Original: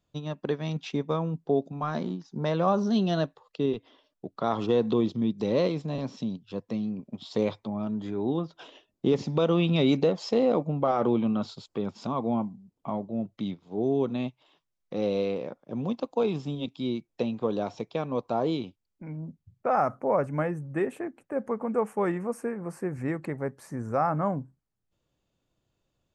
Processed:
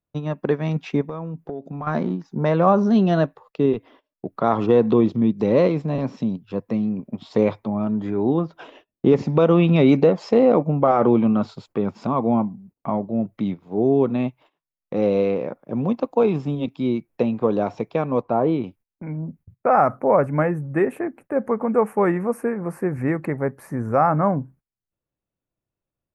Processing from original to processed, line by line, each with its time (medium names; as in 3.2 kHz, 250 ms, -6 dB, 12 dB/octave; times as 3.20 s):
1.01–1.87 s: compression 8:1, threshold -35 dBFS
18.22–18.64 s: distance through air 250 m
whole clip: gate -55 dBFS, range -18 dB; high-order bell 5 kHz -10.5 dB; trim +8 dB